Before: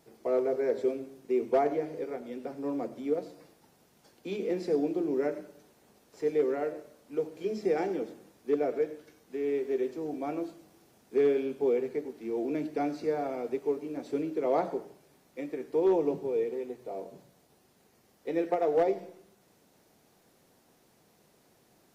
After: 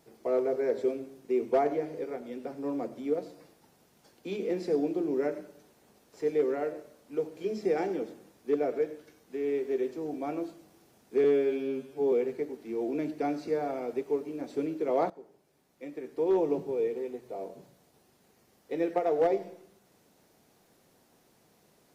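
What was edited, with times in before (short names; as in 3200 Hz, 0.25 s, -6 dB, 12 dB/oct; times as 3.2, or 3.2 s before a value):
11.24–11.68 stretch 2×
14.66–16.06 fade in, from -18 dB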